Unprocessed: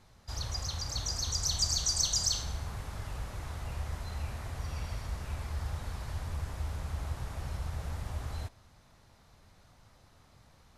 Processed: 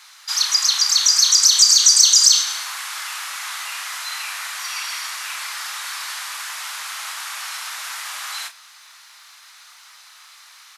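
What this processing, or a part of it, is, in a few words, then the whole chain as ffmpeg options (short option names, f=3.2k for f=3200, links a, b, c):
mastering chain: -filter_complex "[0:a]highpass=f=1.2k:w=0.5412,highpass=f=1.2k:w=1.3066,lowshelf=f=270:g=7,equalizer=f=1.6k:t=o:w=0.77:g=-2,asplit=2[a][b];[b]adelay=31,volume=-9dB[c];[a][c]amix=inputs=2:normalize=0,acompressor=threshold=-37dB:ratio=1.5,tiltshelf=f=740:g=-4.5,asoftclip=type=hard:threshold=-18.5dB,alimiter=level_in=19.5dB:limit=-1dB:release=50:level=0:latency=1,volume=-1dB"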